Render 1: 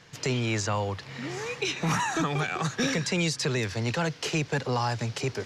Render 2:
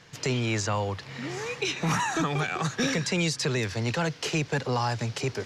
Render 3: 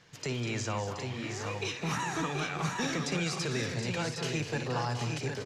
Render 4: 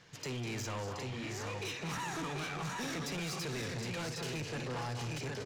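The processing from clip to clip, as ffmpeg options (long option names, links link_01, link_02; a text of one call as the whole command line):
ffmpeg -i in.wav -af "acontrast=50,volume=-5.5dB" out.wav
ffmpeg -i in.wav -af "aecho=1:1:58|199|240|725|764:0.237|0.299|0.282|0.335|0.501,volume=-7dB" out.wav
ffmpeg -i in.wav -af "asoftclip=type=tanh:threshold=-35.5dB" out.wav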